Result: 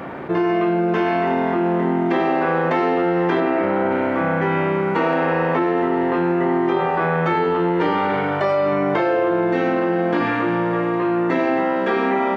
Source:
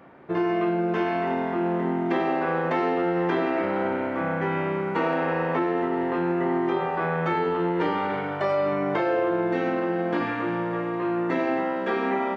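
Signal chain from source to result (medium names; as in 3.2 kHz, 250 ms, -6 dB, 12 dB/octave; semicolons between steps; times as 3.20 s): 3.40–3.91 s: treble shelf 4 kHz -11 dB; level flattener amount 50%; trim +4.5 dB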